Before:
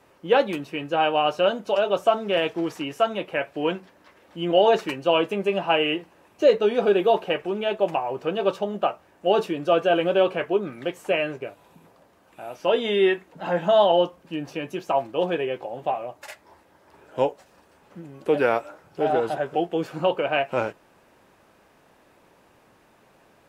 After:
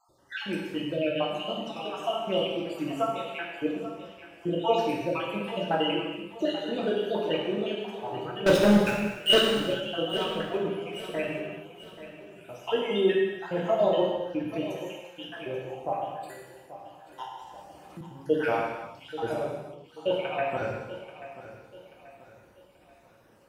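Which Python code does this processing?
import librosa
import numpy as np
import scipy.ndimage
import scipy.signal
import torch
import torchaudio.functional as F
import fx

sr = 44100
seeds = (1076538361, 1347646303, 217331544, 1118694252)

y = fx.spec_dropout(x, sr, seeds[0], share_pct=60)
y = fx.bass_treble(y, sr, bass_db=7, treble_db=4)
y = fx.leveller(y, sr, passes=5, at=(8.46, 9.4))
y = fx.gate_flip(y, sr, shuts_db=-31.0, range_db=-28, at=(19.49, 19.98))
y = fx.echo_feedback(y, sr, ms=834, feedback_pct=40, wet_db=-14)
y = fx.rev_gated(y, sr, seeds[1], gate_ms=430, shape='falling', drr_db=-3.0)
y = fx.band_squash(y, sr, depth_pct=70, at=(17.24, 18.01))
y = y * librosa.db_to_amplitude(-7.5)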